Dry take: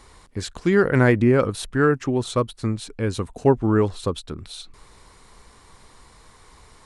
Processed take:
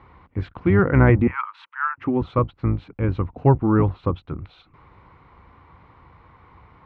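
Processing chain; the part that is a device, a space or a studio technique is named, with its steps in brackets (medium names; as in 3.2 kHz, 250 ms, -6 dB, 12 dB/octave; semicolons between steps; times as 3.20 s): 1.27–1.98 s: steep high-pass 870 Hz 96 dB/octave; sub-octave bass pedal (octave divider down 1 oct, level -4 dB; cabinet simulation 69–2200 Hz, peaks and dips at 92 Hz +4 dB, 220 Hz -5 dB, 420 Hz -7 dB, 630 Hz -5 dB, 1.7 kHz -8 dB); trim +3.5 dB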